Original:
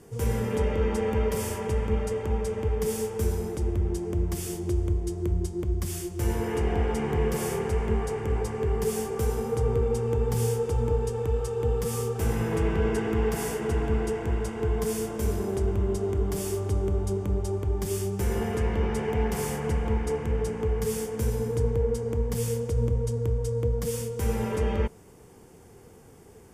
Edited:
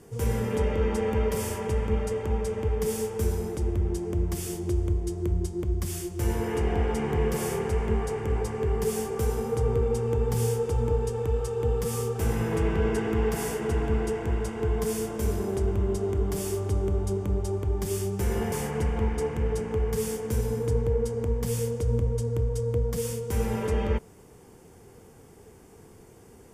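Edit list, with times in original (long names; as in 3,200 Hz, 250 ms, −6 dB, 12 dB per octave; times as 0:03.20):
0:18.52–0:19.41: remove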